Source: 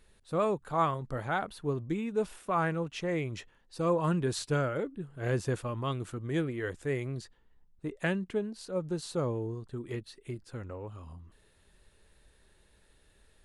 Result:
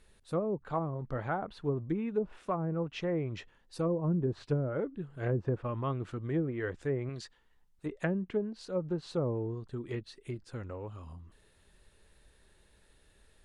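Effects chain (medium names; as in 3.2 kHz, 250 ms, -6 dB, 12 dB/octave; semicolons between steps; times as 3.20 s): 7.09–7.86 s: tilt shelf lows -5.5 dB, about 640 Hz; low-pass that closes with the level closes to 410 Hz, closed at -24.5 dBFS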